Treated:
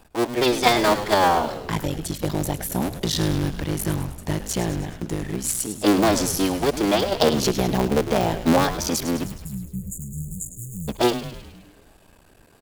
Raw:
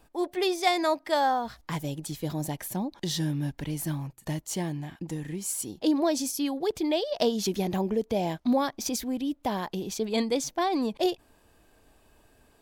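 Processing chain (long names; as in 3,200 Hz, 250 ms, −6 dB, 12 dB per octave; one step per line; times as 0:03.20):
sub-harmonics by changed cycles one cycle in 3, muted
time-frequency box erased 0:09.24–0:10.89, 210–6,700 Hz
echo with shifted repeats 104 ms, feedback 58%, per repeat −110 Hz, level −11 dB
level +8 dB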